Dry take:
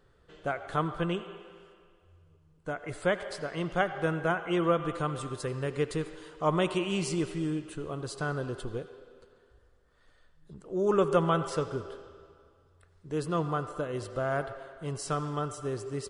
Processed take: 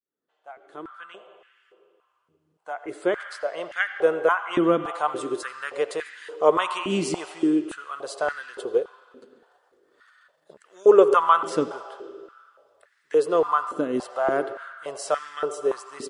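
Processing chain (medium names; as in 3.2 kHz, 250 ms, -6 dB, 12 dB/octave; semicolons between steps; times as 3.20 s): fade-in on the opening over 5.13 s; 8.71–10.90 s: transient shaper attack +4 dB, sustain -2 dB; step-sequenced high-pass 3.5 Hz 260–1800 Hz; trim +3.5 dB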